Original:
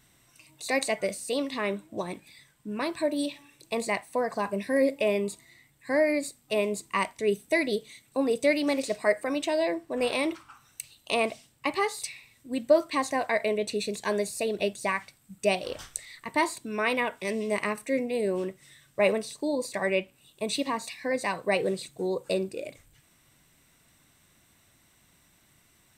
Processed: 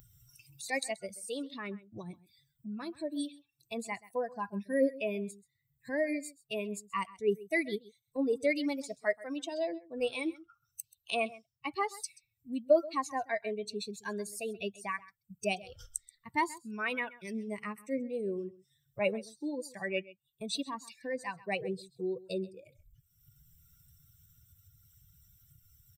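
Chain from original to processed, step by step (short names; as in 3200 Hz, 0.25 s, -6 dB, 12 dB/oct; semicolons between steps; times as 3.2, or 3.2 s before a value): per-bin expansion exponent 2; upward compressor, threshold -36 dBFS; echo 0.131 s -19.5 dB; gain -1.5 dB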